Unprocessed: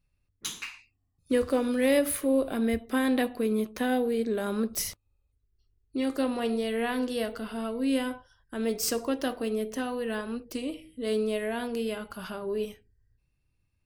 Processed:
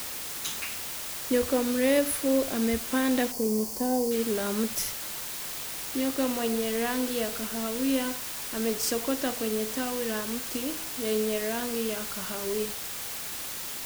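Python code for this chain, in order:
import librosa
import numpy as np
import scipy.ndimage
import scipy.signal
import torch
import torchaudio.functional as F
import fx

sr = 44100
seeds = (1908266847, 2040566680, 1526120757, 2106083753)

y = fx.quant_dither(x, sr, seeds[0], bits=6, dither='triangular')
y = fx.spec_box(y, sr, start_s=3.31, length_s=0.81, low_hz=1100.0, high_hz=4300.0, gain_db=-13)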